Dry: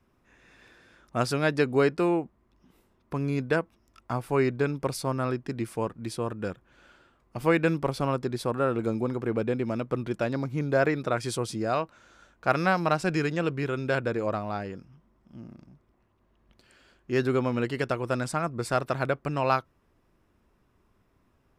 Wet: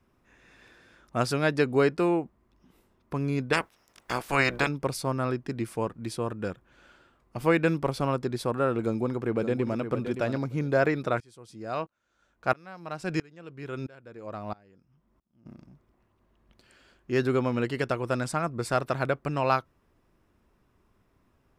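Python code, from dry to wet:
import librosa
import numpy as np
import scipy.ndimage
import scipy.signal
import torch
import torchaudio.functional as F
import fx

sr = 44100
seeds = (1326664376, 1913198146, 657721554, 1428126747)

y = fx.spec_clip(x, sr, under_db=24, at=(3.52, 4.67), fade=0.02)
y = fx.echo_throw(y, sr, start_s=8.79, length_s=1.01, ms=570, feedback_pct=15, wet_db=-9.0)
y = fx.tremolo_decay(y, sr, direction='swelling', hz=1.5, depth_db=28, at=(11.2, 15.46))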